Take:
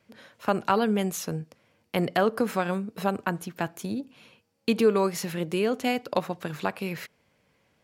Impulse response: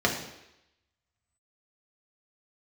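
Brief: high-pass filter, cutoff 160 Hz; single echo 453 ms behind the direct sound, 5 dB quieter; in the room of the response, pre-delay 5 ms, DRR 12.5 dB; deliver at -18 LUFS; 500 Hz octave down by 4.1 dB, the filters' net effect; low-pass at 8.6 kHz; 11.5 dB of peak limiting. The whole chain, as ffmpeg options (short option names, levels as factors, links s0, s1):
-filter_complex "[0:a]highpass=160,lowpass=8600,equalizer=f=500:t=o:g=-5,alimiter=limit=0.0891:level=0:latency=1,aecho=1:1:453:0.562,asplit=2[s0][s1];[1:a]atrim=start_sample=2205,adelay=5[s2];[s1][s2]afir=irnorm=-1:irlink=0,volume=0.0501[s3];[s0][s3]amix=inputs=2:normalize=0,volume=5.31"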